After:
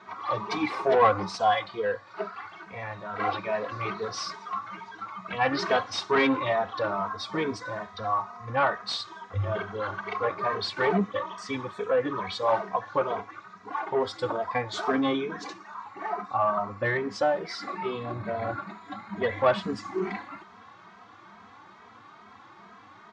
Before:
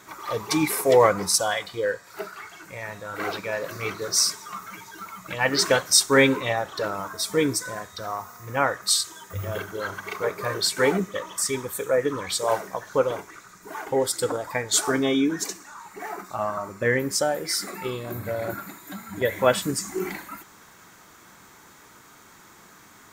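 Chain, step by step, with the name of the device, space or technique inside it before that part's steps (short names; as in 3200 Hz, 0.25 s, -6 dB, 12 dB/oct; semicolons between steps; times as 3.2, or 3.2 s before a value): barber-pole flanger into a guitar amplifier (endless flanger 2.8 ms +2.3 Hz; soft clip -18.5 dBFS, distortion -13 dB; speaker cabinet 82–4200 Hz, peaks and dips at 100 Hz +7 dB, 150 Hz -6 dB, 210 Hz +6 dB, 740 Hz +8 dB, 1100 Hz +9 dB)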